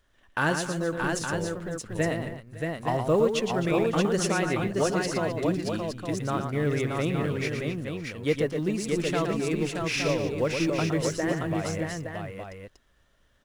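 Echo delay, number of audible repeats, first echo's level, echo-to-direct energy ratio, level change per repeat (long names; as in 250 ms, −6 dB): 115 ms, 5, −6.5 dB, −0.5 dB, repeats not evenly spaced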